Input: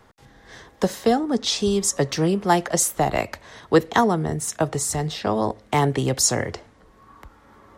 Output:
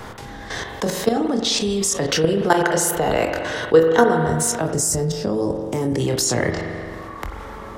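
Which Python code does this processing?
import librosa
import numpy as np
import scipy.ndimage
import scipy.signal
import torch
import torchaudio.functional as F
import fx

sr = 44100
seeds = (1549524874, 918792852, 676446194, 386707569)

y = fx.doubler(x, sr, ms=25.0, db=-6)
y = fx.level_steps(y, sr, step_db=15)
y = fx.small_body(y, sr, hz=(470.0, 1500.0, 2900.0), ring_ms=30, db=11, at=(2.06, 4.13))
y = fx.spec_box(y, sr, start_s=4.66, length_s=1.34, low_hz=620.0, high_hz=4600.0, gain_db=-12)
y = fx.rev_spring(y, sr, rt60_s=1.5, pass_ms=(43,), chirp_ms=45, drr_db=8.5)
y = fx.env_flatten(y, sr, amount_pct=50)
y = y * 10.0 ** (-2.5 / 20.0)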